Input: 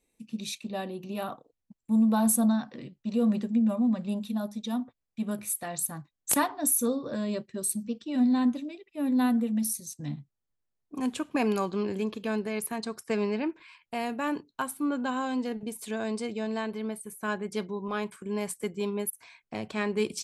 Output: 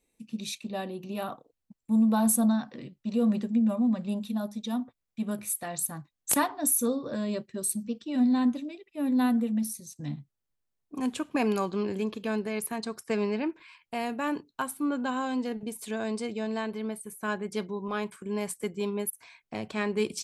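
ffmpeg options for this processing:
-filter_complex "[0:a]asettb=1/sr,asplit=3[a][b][c];[a]atrim=end=9.534[d];[b]atrim=start=9.53:end=9.96,asetpts=PTS-STARTPTS,afade=t=in:d=0.004:c=qsin,afade=t=out:st=0.426:d=0.004:c=qsin,highshelf=f=3.8k:g=-6.5[e];[c]atrim=start=9.956[f];[d][e]acrossfade=d=0.004:c1=hsin:c2=qsin[g];[g][f]acrossfade=d=0.004:c1=qsin:c2=hsin"

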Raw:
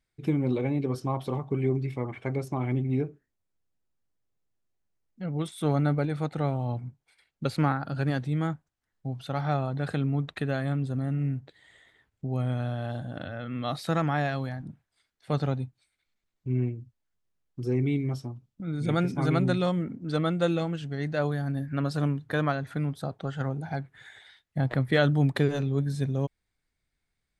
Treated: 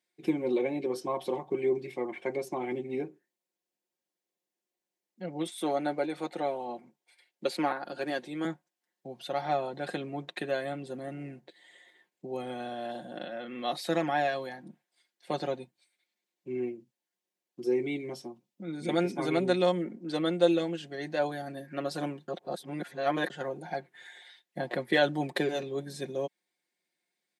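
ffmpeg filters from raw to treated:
-filter_complex "[0:a]asettb=1/sr,asplit=3[a][b][c];[a]atrim=end=5.484[d];[b]atrim=start=5.48:end=8.45,asetpts=PTS-STARTPTS,afade=t=in:d=0.004:c=qsin,afade=t=out:st=2.966:d=0.004:c=qsin,highpass=220[e];[c]atrim=start=8.446[f];[d][e]acrossfade=d=0.004:c1=hsin:c2=qsin[g];[g][f]acrossfade=d=0.004:c1=qsin:c2=hsin,asplit=3[h][i][j];[h]atrim=end=22.282[k];[i]atrim=start=22.278:end=23.302,asetpts=PTS-STARTPTS,areverse[l];[j]atrim=start=23.298[m];[k][l]acrossfade=d=0.004:c1=hsin:c2=hsin[n];[n][m]acrossfade=d=0.004:c1=hsin:c2=hsin,highpass=f=250:w=0.5412,highpass=f=250:w=1.3066,equalizer=f=1.3k:t=o:w=0.4:g=-9.5,aecho=1:1:5.6:0.66"

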